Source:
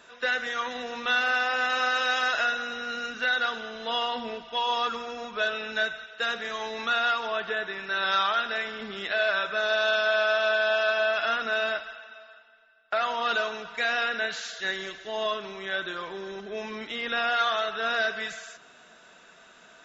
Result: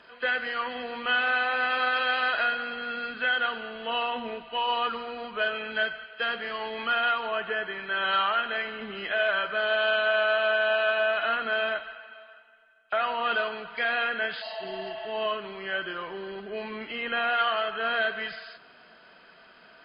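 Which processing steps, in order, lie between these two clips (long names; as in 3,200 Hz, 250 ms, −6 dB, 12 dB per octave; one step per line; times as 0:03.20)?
hearing-aid frequency compression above 2,300 Hz 1.5 to 1
healed spectral selection 0:14.45–0:15.04, 530–3,700 Hz after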